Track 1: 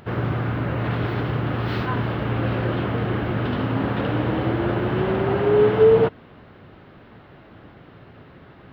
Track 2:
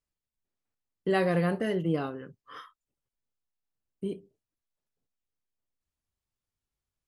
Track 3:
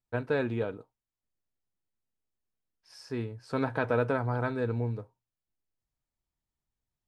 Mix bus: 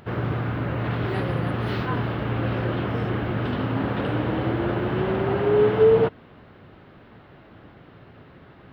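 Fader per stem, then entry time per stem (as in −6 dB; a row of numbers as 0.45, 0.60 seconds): −2.0, −7.0, −14.0 decibels; 0.00, 0.00, 0.00 seconds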